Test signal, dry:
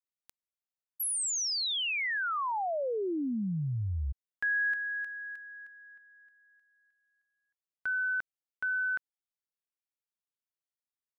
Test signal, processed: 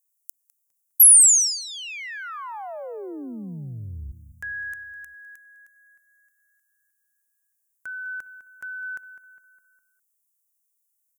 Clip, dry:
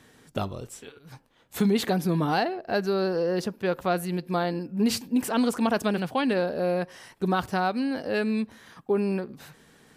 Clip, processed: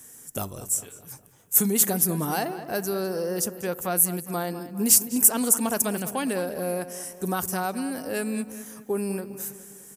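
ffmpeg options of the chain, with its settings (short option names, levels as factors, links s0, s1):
-filter_complex "[0:a]asplit=2[s0][s1];[s1]adelay=204,lowpass=f=3100:p=1,volume=0.237,asplit=2[s2][s3];[s3]adelay=204,lowpass=f=3100:p=1,volume=0.52,asplit=2[s4][s5];[s5]adelay=204,lowpass=f=3100:p=1,volume=0.52,asplit=2[s6][s7];[s7]adelay=204,lowpass=f=3100:p=1,volume=0.52,asplit=2[s8][s9];[s9]adelay=204,lowpass=f=3100:p=1,volume=0.52[s10];[s0][s2][s4][s6][s8][s10]amix=inputs=6:normalize=0,aexciter=amount=15.9:drive=3.8:freq=6100,volume=0.708"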